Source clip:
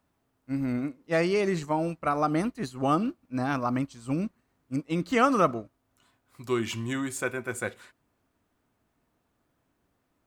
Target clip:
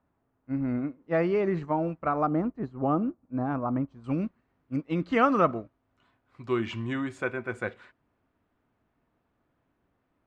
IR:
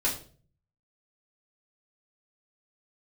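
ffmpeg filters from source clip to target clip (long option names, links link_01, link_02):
-af "asetnsamples=nb_out_samples=441:pad=0,asendcmd='2.27 lowpass f 1000;4.04 lowpass f 2700',lowpass=1700"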